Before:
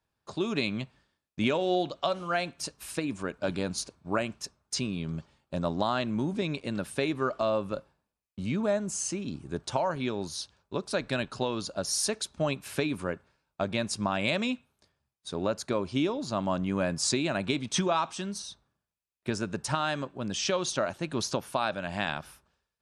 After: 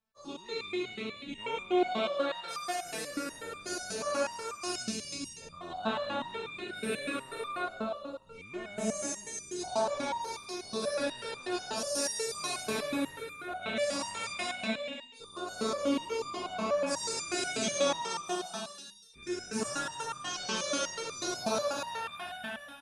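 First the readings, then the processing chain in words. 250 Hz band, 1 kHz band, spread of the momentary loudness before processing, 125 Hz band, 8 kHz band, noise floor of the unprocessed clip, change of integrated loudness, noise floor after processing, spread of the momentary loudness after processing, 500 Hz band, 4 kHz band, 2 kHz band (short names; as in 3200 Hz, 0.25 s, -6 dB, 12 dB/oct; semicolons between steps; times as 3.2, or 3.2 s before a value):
-6.0 dB, -2.0 dB, 10 LU, -15.5 dB, -1.5 dB, under -85 dBFS, -3.5 dB, -51 dBFS, 10 LU, -3.0 dB, -1.5 dB, -2.0 dB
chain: spectral dilation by 0.24 s; bouncing-ball echo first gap 0.27 s, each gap 0.6×, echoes 5; stepped resonator 8.2 Hz 220–1200 Hz; gain +3 dB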